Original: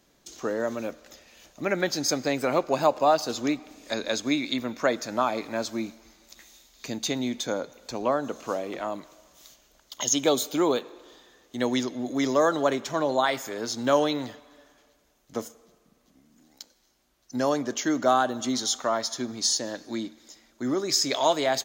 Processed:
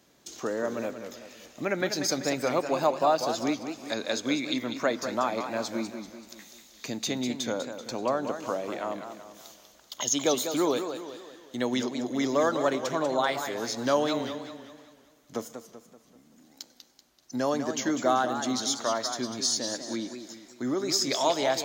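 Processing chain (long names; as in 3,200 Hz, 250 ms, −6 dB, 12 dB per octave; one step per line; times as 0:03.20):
high-pass filter 78 Hz
in parallel at −1 dB: downward compressor, threshold −37 dBFS, peak gain reduction 20 dB
on the sum: feedback echo with a swinging delay time 192 ms, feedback 45%, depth 153 cents, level −8.5 dB
level −4 dB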